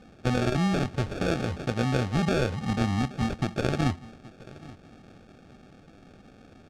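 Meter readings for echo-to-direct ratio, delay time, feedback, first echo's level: −20.0 dB, 826 ms, 18%, −20.0 dB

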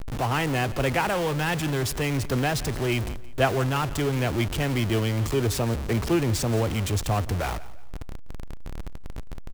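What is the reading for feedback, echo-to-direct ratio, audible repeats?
33%, −17.5 dB, 2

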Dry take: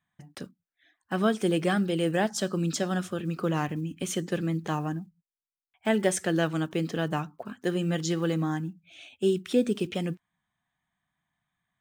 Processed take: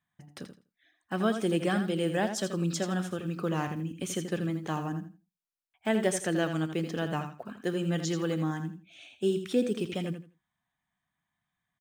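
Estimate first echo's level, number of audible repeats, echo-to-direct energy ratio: −9.0 dB, 2, −9.0 dB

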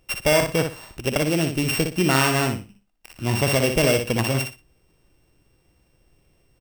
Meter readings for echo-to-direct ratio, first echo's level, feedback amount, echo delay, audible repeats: −6.5 dB, −6.5 dB, 23%, 60 ms, 3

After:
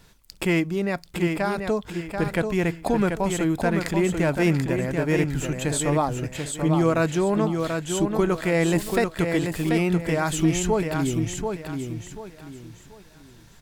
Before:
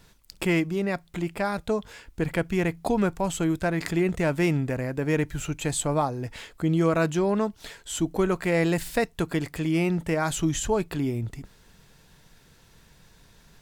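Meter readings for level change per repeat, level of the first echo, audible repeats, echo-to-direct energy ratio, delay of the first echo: −10.0 dB, −5.5 dB, 3, −5.0 dB, 736 ms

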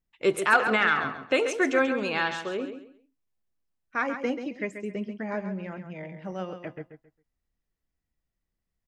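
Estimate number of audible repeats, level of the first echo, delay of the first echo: 3, −9.0 dB, 135 ms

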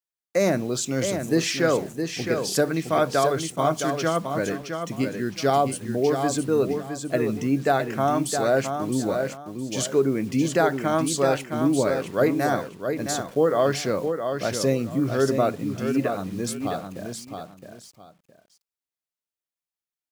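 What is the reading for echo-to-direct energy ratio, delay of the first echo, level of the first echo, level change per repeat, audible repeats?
−6.5 dB, 665 ms, −6.5 dB, −12.5 dB, 2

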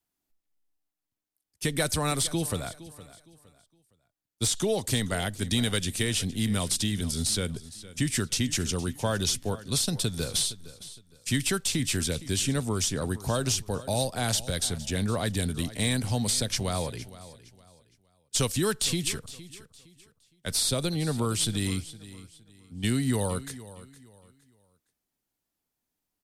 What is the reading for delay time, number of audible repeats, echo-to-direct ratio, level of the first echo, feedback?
463 ms, 2, −16.5 dB, −17.0 dB, 30%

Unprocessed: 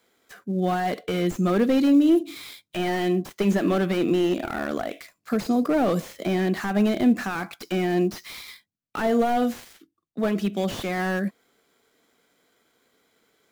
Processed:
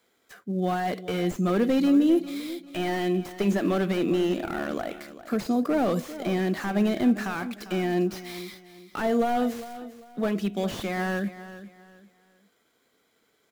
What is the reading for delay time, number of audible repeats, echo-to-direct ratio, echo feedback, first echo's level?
399 ms, 2, −14.0 dB, 30%, −14.5 dB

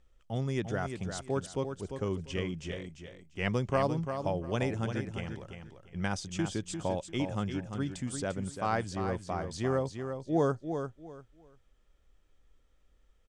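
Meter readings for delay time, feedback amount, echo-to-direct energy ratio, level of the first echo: 346 ms, 23%, −7.5 dB, −7.5 dB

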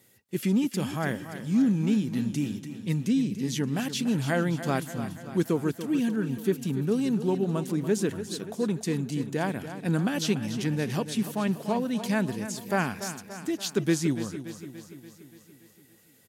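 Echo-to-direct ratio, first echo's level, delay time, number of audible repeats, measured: −9.5 dB, −11.5 dB, 288 ms, 6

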